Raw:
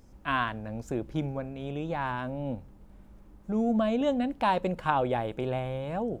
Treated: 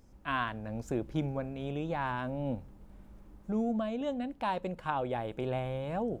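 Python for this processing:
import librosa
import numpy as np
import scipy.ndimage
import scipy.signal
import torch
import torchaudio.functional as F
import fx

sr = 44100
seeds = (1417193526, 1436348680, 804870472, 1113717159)

y = fx.rider(x, sr, range_db=4, speed_s=0.5)
y = y * 10.0 ** (-4.5 / 20.0)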